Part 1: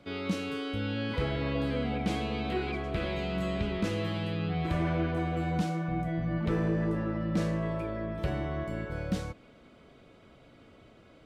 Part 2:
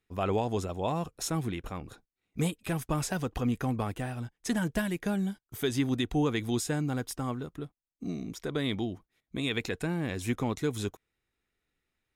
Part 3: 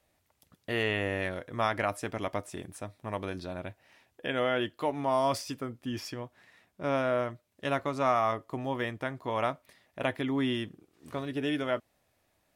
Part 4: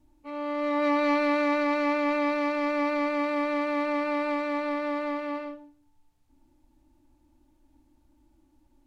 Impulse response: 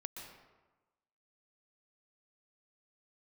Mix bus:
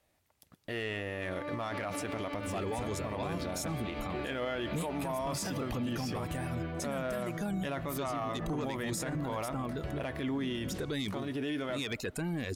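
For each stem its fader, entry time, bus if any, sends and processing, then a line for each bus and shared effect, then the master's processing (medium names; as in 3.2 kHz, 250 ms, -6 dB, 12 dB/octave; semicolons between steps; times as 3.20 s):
-7.0 dB, 1.60 s, no send, none
+2.5 dB, 2.35 s, no send, saturation -24 dBFS, distortion -16 dB; treble shelf 5.2 kHz +6 dB; reverb removal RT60 0.73 s
0.0 dB, 0.00 s, send -15.5 dB, waveshaping leveller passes 1
-13.0 dB, 0.65 s, no send, none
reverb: on, RT60 1.2 s, pre-delay 115 ms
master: peak limiter -27.5 dBFS, peak gain reduction 15 dB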